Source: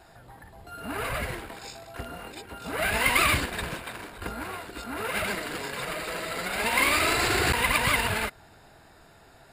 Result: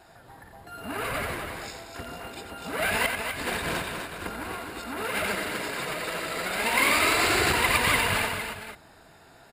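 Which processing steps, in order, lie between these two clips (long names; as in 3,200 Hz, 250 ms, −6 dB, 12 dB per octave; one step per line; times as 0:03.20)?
0:03.06–0:03.83: compressor whose output falls as the input rises −35 dBFS, ratio −1
low-shelf EQ 76 Hz −6.5 dB
mains-hum notches 60/120 Hz
multi-tap delay 89/250/456 ms −8.5/−7/−11.5 dB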